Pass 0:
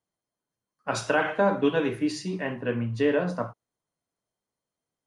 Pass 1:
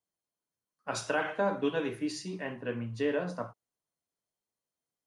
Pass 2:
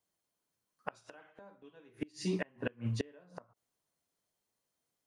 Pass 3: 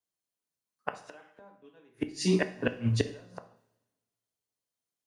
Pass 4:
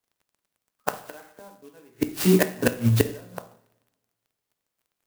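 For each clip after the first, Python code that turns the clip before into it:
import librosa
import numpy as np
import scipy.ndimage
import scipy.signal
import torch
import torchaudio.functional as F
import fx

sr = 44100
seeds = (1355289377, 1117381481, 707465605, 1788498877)

y1 = fx.bass_treble(x, sr, bass_db=-2, treble_db=4)
y1 = F.gain(torch.from_numpy(y1), -6.5).numpy()
y2 = fx.gate_flip(y1, sr, shuts_db=-27.0, range_db=-32)
y2 = F.gain(torch.from_numpy(y2), 5.5).numpy()
y3 = fx.rev_double_slope(y2, sr, seeds[0], early_s=0.68, late_s=2.2, knee_db=-18, drr_db=9.5)
y3 = fx.band_widen(y3, sr, depth_pct=40)
y3 = F.gain(torch.from_numpy(y3), 6.5).numpy()
y4 = fx.dmg_crackle(y3, sr, seeds[1], per_s=22.0, level_db=-59.0)
y4 = fx.clock_jitter(y4, sr, seeds[2], jitter_ms=0.059)
y4 = F.gain(torch.from_numpy(y4), 7.5).numpy()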